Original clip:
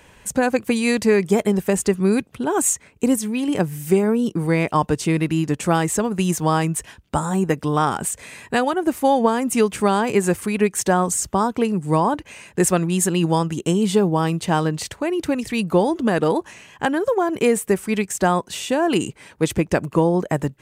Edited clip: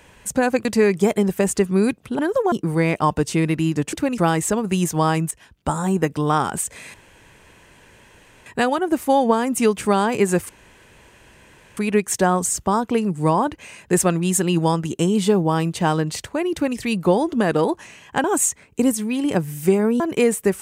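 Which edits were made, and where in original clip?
0:00.65–0:00.94: remove
0:02.48–0:04.24: swap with 0:16.91–0:17.24
0:06.78–0:07.33: fade in equal-power, from −14.5 dB
0:08.41: splice in room tone 1.52 s
0:10.44: splice in room tone 1.28 s
0:15.19–0:15.44: duplicate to 0:05.65

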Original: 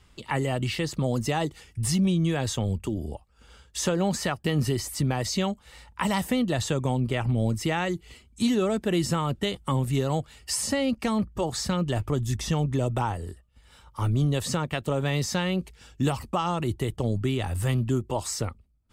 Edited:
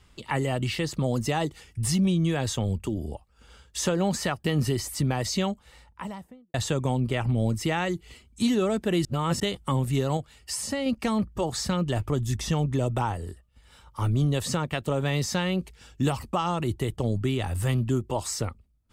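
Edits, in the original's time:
0:05.38–0:06.54: fade out and dull
0:09.05–0:09.40: reverse
0:10.17–0:10.86: clip gain −3.5 dB

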